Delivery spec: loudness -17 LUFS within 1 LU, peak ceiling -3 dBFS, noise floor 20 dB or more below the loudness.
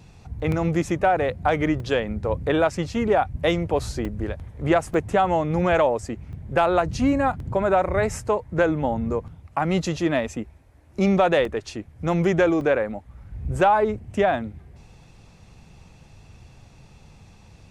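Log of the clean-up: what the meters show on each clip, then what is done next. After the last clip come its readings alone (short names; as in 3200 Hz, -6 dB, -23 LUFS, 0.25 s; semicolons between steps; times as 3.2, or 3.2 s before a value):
dropouts 8; longest dropout 2.0 ms; loudness -23.0 LUFS; peak -7.5 dBFS; loudness target -17.0 LUFS
-> interpolate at 0.52/1.8/4.05/4.94/6.33/7.4/11.45/12.61, 2 ms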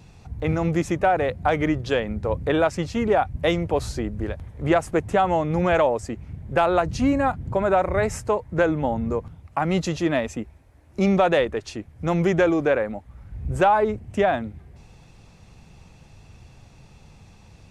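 dropouts 0; loudness -23.0 LUFS; peak -7.5 dBFS; loudness target -17.0 LUFS
-> gain +6 dB; limiter -3 dBFS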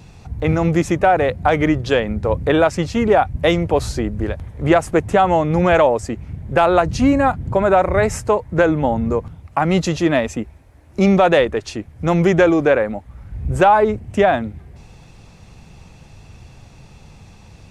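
loudness -17.0 LUFS; peak -3.0 dBFS; noise floor -45 dBFS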